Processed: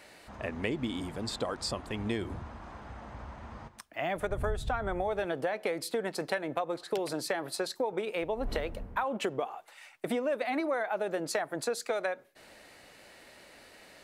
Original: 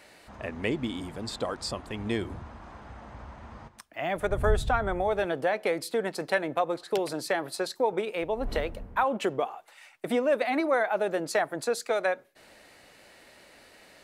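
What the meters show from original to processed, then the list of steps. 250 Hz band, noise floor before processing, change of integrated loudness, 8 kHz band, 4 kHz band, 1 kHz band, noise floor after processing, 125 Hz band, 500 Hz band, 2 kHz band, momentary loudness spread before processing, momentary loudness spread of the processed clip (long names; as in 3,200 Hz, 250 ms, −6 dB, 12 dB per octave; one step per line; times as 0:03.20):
−3.0 dB, −55 dBFS, −4.5 dB, −1.0 dB, −1.5 dB, −5.0 dB, −56 dBFS, −3.5 dB, −4.5 dB, −4.5 dB, 19 LU, 21 LU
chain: downward compressor 5 to 1, threshold −28 dBFS, peak gain reduction 10 dB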